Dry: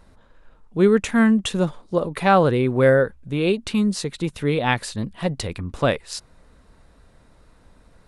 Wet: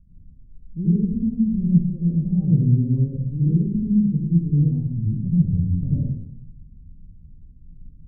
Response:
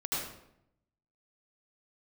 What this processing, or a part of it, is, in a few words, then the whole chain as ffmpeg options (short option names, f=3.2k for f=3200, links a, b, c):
club heard from the street: -filter_complex "[0:a]alimiter=limit=-12dB:level=0:latency=1:release=34,lowpass=f=190:w=0.5412,lowpass=f=190:w=1.3066[a];[1:a]atrim=start_sample=2205[b];[a][b]afir=irnorm=-1:irlink=0,asettb=1/sr,asplit=3[c][d][e];[c]atrim=end=2.974[f];[d]atrim=start=2.97:end=4.09,asetpts=PTS-STARTPTS,afade=t=in:d=0.004:c=qsin,afade=t=out:st=1.116:d=0.004:c=qsin,equalizer=f=1k:w=2.9:g=12.5[g];[e]atrim=start=4.086[h];[f][g]acrossfade=d=0.004:c1=hsin:c2=qsin[i];[i][h]acrossfade=d=0.004:c1=qsin:c2=hsin,volume=3dB"